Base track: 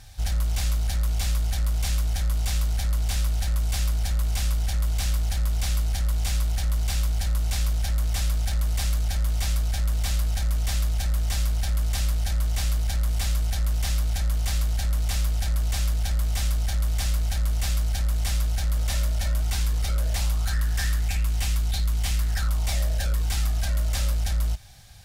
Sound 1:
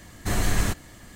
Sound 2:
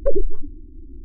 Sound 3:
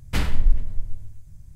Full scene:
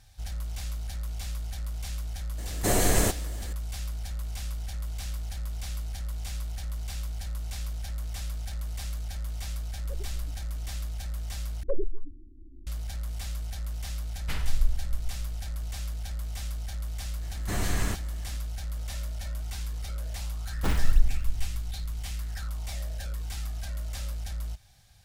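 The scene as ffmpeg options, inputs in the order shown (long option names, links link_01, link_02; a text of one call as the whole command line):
ffmpeg -i bed.wav -i cue0.wav -i cue1.wav -i cue2.wav -filter_complex "[1:a]asplit=2[link_01][link_02];[2:a]asplit=2[link_03][link_04];[3:a]asplit=2[link_05][link_06];[0:a]volume=-10dB[link_07];[link_01]firequalizer=gain_entry='entry(150,0);entry(490,11);entry(1100,0);entry(8800,9)':delay=0.05:min_phase=1[link_08];[link_03]alimiter=limit=-16dB:level=0:latency=1:release=71[link_09];[link_05]equalizer=frequency=270:width_type=o:width=2.2:gain=-8.5[link_10];[link_06]acrusher=samples=19:mix=1:aa=0.000001:lfo=1:lforange=30.4:lforate=3.3[link_11];[link_07]asplit=2[link_12][link_13];[link_12]atrim=end=11.634[link_14];[link_04]atrim=end=1.04,asetpts=PTS-STARTPTS,volume=-10.5dB[link_15];[link_13]atrim=start=12.666[link_16];[link_08]atrim=end=1.15,asetpts=PTS-STARTPTS,volume=-2dB,afade=type=in:duration=0.004:curve=hsin,afade=type=out:start_time=1.146:duration=0.004:curve=hsin,adelay=2380[link_17];[link_09]atrim=end=1.04,asetpts=PTS-STARTPTS,volume=-17dB,afade=type=in:duration=0.004:curve=hsin,afade=type=out:start_time=1.036:duration=0.004:curve=hsin,adelay=9840[link_18];[link_10]atrim=end=1.55,asetpts=PTS-STARTPTS,volume=-7dB,afade=type=in:duration=0.004:curve=hsin,afade=type=out:start_time=1.546:duration=0.004:curve=hsin,adelay=14150[link_19];[link_02]atrim=end=1.15,asetpts=PTS-STARTPTS,volume=-5dB,afade=type=in:duration=0.004:curve=hsin,afade=type=out:start_time=1.146:duration=0.004:curve=hsin,adelay=17220[link_20];[link_11]atrim=end=1.55,asetpts=PTS-STARTPTS,volume=-3.5dB,afade=type=in:duration=0.004:curve=hsin,afade=type=out:start_time=1.546:duration=0.004:curve=hsin,adelay=20500[link_21];[link_14][link_15]acrossfade=duration=0.004:curve1=hsin:curve2=hsin[link_22];[link_22][link_16]acrossfade=duration=0.004:curve1=hsin:curve2=hsin[link_23];[link_23][link_17][link_18][link_19][link_20][link_21]amix=inputs=6:normalize=0" out.wav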